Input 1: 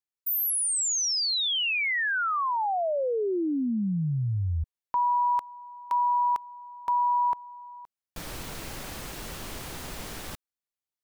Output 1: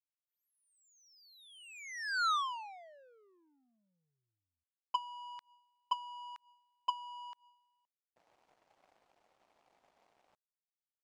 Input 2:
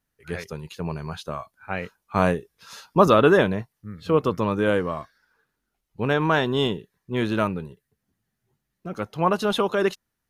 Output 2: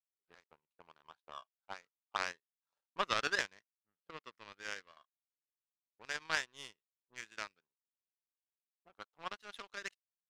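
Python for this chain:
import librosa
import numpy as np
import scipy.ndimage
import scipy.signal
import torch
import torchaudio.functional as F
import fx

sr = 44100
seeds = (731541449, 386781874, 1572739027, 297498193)

y = fx.auto_wah(x, sr, base_hz=560.0, top_hz=1900.0, q=2.6, full_db=-21.5, direction='up')
y = fx.power_curve(y, sr, exponent=2.0)
y = fx.peak_eq(y, sr, hz=6800.0, db=8.0, octaves=1.9)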